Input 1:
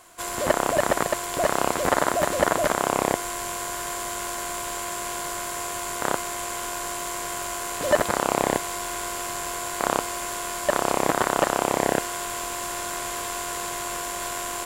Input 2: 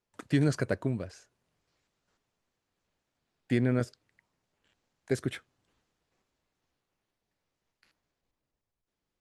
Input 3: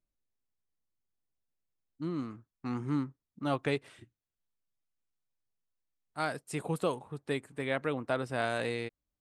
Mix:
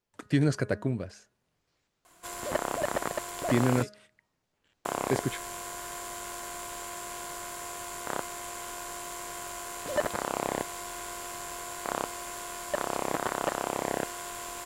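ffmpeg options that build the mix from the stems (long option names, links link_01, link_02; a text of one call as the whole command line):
ffmpeg -i stem1.wav -i stem2.wav -i stem3.wav -filter_complex "[0:a]adelay=2050,volume=-8.5dB,asplit=3[link_01][link_02][link_03];[link_01]atrim=end=3.83,asetpts=PTS-STARTPTS,afade=type=out:start_time=3.826:duration=0.004:curve=hsin[link_04];[link_02]atrim=start=3.83:end=4.85,asetpts=PTS-STARTPTS,volume=0[link_05];[link_03]atrim=start=4.85,asetpts=PTS-STARTPTS,afade=type=in:duration=0.004:curve=hsin[link_06];[link_04][link_05][link_06]concat=n=3:v=0:a=1[link_07];[1:a]bandreject=frequency=208.5:width_type=h:width=4,bandreject=frequency=417:width_type=h:width=4,bandreject=frequency=625.5:width_type=h:width=4,bandreject=frequency=834:width_type=h:width=4,bandreject=frequency=1042.5:width_type=h:width=4,bandreject=frequency=1251:width_type=h:width=4,bandreject=frequency=1459.5:width_type=h:width=4,bandreject=frequency=1668:width_type=h:width=4,bandreject=frequency=1876.5:width_type=h:width=4,volume=1dB,asplit=2[link_08][link_09];[2:a]acompressor=threshold=-37dB:ratio=6,adelay=100,volume=-1dB[link_10];[link_09]apad=whole_len=410250[link_11];[link_10][link_11]sidechaingate=range=-33dB:threshold=-54dB:ratio=16:detection=peak[link_12];[link_07][link_08][link_12]amix=inputs=3:normalize=0" out.wav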